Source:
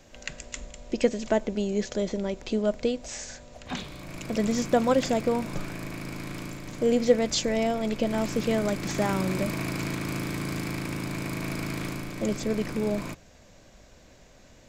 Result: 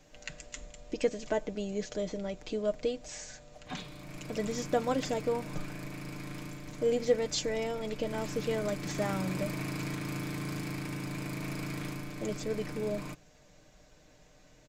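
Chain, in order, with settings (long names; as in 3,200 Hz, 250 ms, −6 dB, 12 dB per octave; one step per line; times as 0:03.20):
comb filter 6.6 ms, depth 54%
level −7 dB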